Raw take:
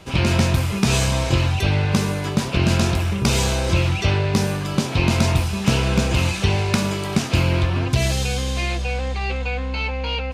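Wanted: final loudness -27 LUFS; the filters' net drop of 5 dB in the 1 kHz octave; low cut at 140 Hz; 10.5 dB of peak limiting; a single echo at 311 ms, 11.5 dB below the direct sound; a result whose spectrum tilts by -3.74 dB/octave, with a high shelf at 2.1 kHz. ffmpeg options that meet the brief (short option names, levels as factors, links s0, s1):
-af "highpass=140,equalizer=f=1000:t=o:g=-7.5,highshelf=f=2100:g=4,alimiter=limit=0.2:level=0:latency=1,aecho=1:1:311:0.266,volume=0.708"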